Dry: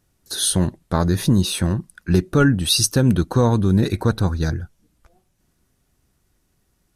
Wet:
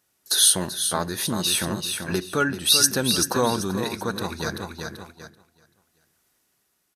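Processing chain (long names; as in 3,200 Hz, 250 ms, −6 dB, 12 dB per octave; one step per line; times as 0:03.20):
parametric band 12,000 Hz +4.5 dB 0.23 octaves
repeating echo 386 ms, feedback 33%, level −8 dB
noise gate −37 dBFS, range −7 dB
shaped tremolo triangle 0.68 Hz, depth 45%
in parallel at +3 dB: downward compressor, threshold −33 dBFS, peak gain reduction 20 dB
on the sum: high-pass filter 820 Hz 6 dB per octave
on a send at −20 dB: convolution reverb RT60 0.80 s, pre-delay 5 ms
on the sum: level +2 dB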